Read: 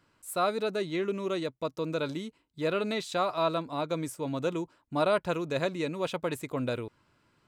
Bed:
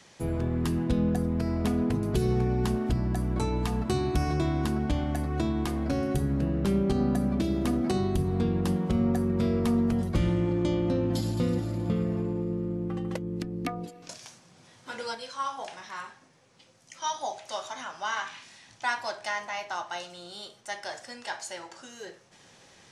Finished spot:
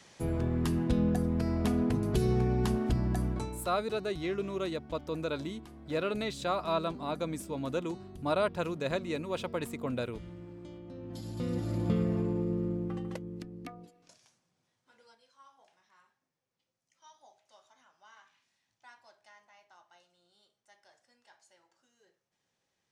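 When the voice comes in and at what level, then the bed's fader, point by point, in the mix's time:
3.30 s, -3.0 dB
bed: 3.26 s -2 dB
3.77 s -20.5 dB
10.87 s -20.5 dB
11.74 s -1 dB
12.67 s -1 dB
14.92 s -26.5 dB

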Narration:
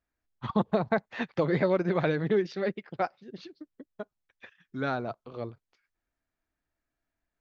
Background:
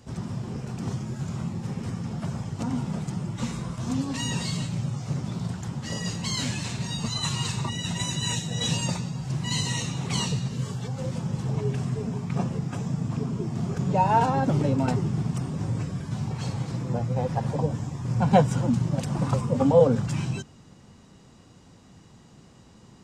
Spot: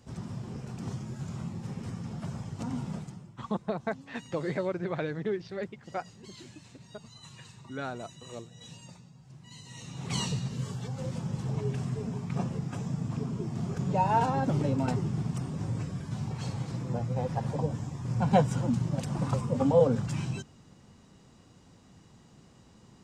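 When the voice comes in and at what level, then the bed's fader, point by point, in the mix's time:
2.95 s, -6.0 dB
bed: 2.95 s -6 dB
3.36 s -22 dB
9.63 s -22 dB
10.12 s -4.5 dB

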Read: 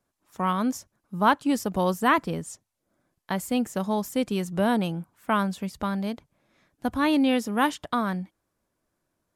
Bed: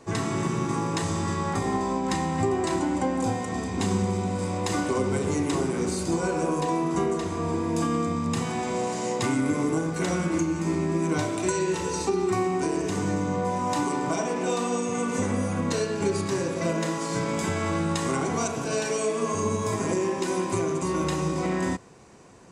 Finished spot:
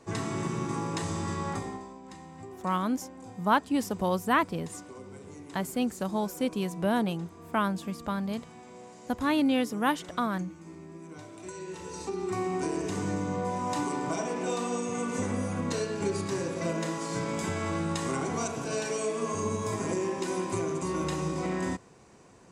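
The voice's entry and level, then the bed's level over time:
2.25 s, -3.5 dB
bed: 1.52 s -5 dB
1.95 s -20 dB
11.14 s -20 dB
12.54 s -4.5 dB

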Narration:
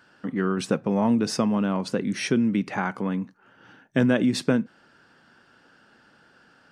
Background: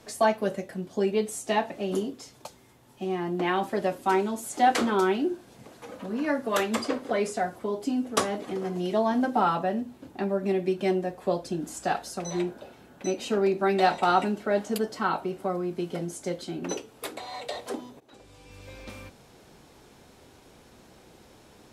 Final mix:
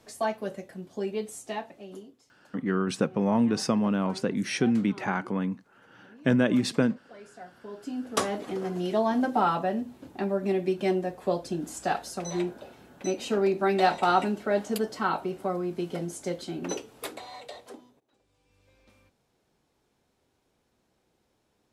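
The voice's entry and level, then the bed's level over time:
2.30 s, -2.0 dB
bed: 1.38 s -6 dB
2.38 s -22 dB
7.19 s -22 dB
8.25 s -0.5 dB
17.04 s -0.5 dB
18.18 s -19 dB

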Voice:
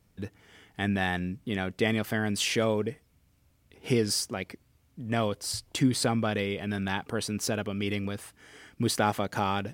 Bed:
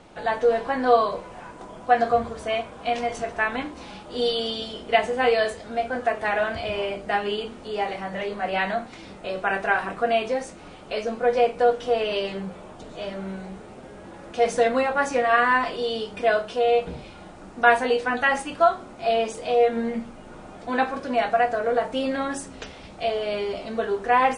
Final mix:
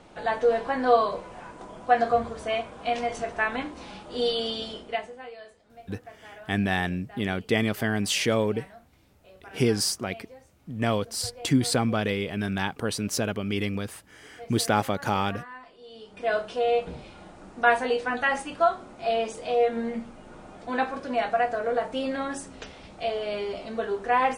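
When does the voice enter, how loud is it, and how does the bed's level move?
5.70 s, +2.5 dB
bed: 4.73 s -2 dB
5.30 s -23 dB
15.80 s -23 dB
16.35 s -3.5 dB

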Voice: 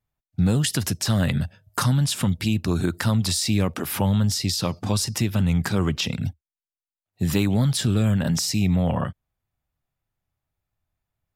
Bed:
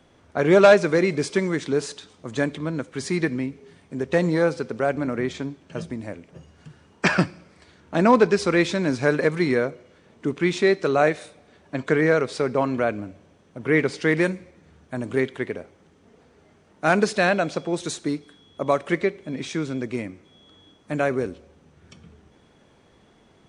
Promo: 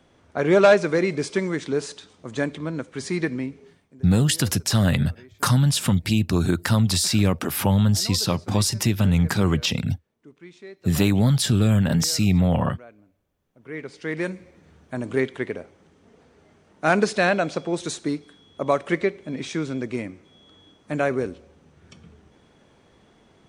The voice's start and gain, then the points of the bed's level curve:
3.65 s, +2.0 dB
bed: 3.66 s -1.5 dB
4.06 s -23 dB
13.32 s -23 dB
14.54 s 0 dB

